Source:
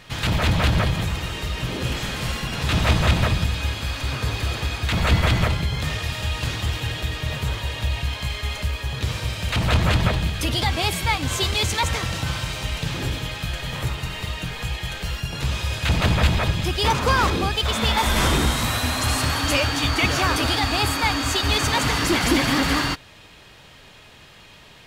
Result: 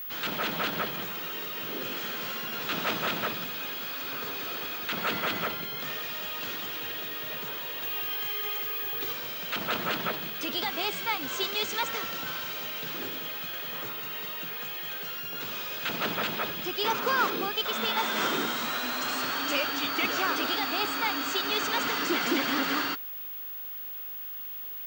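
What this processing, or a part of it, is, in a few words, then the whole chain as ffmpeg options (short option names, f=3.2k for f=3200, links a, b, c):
old television with a line whistle: -filter_complex "[0:a]highpass=f=210:w=0.5412,highpass=f=210:w=1.3066,equalizer=f=420:t=q:w=4:g=4,equalizer=f=1.4k:t=q:w=4:g=7,equalizer=f=3k:t=q:w=4:g=3,lowpass=f=7.3k:w=0.5412,lowpass=f=7.3k:w=1.3066,aeval=exprs='val(0)+0.0447*sin(2*PI*15625*n/s)':c=same,asettb=1/sr,asplit=3[a][b][c];[a]atrim=end=7.834[d];[b]atrim=start=7.83:end=9.13,asetpts=PTS-STARTPTS,afade=t=in:d=0.004:c=qsin,afade=t=out:st=1.296:d=0.004:c=qsin,aecho=1:1:2.5:0.7,atrim=end_sample=57330[e];[c]atrim=start=9.126[f];[d][e]acrossfade=d=0.004:c1=hsin:c2=qsin[g];[g][f]acrossfade=d=0.004:c1=qsin:c2=hsin,volume=-8.5dB"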